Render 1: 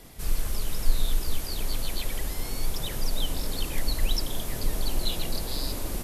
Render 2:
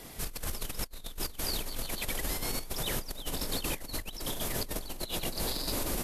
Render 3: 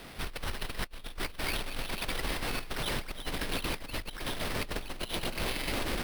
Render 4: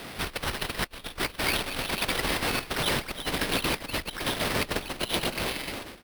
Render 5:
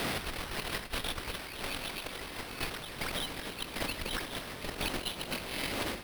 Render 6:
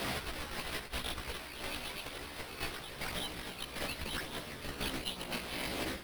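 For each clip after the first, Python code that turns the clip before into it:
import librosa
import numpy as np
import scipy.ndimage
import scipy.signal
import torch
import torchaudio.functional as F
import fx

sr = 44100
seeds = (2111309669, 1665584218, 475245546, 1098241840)

y1 = fx.low_shelf(x, sr, hz=130.0, db=-8.0)
y1 = fx.over_compress(y1, sr, threshold_db=-34.0, ratio=-0.5)
y2 = fx.sample_hold(y1, sr, seeds[0], rate_hz=7000.0, jitter_pct=0)
y3 = fx.fade_out_tail(y2, sr, length_s=0.86)
y3 = fx.highpass(y3, sr, hz=95.0, slope=6)
y3 = y3 * 10.0 ** (7.5 / 20.0)
y4 = fx.over_compress(y3, sr, threshold_db=-39.0, ratio=-1.0)
y4 = fx.echo_feedback(y4, sr, ms=256, feedback_pct=58, wet_db=-14)
y5 = fx.chorus_voices(y4, sr, voices=2, hz=0.46, base_ms=15, depth_ms=1.9, mix_pct=45)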